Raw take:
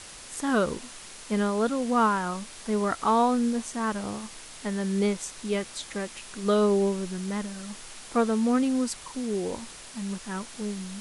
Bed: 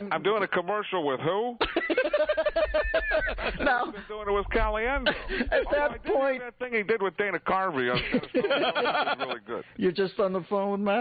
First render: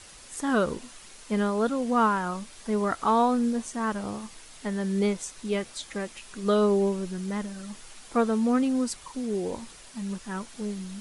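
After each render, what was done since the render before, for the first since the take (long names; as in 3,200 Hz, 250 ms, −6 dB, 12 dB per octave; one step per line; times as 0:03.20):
broadband denoise 6 dB, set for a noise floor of −45 dBFS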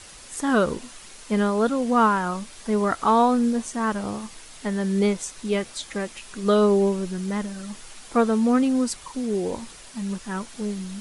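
level +4 dB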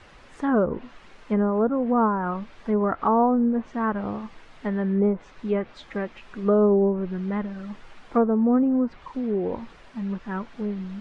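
low-pass filter 2,100 Hz 12 dB per octave
treble cut that deepens with the level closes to 920 Hz, closed at −17 dBFS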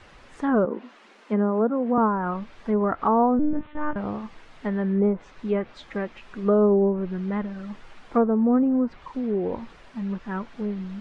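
0:00.65–0:01.98: elliptic high-pass filter 200 Hz
0:03.39–0:03.96: one-pitch LPC vocoder at 8 kHz 300 Hz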